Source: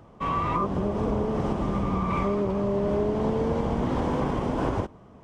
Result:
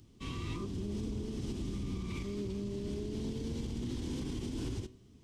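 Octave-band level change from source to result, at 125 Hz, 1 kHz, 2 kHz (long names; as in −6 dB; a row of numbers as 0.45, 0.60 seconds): −9.5, −25.5, −13.0 decibels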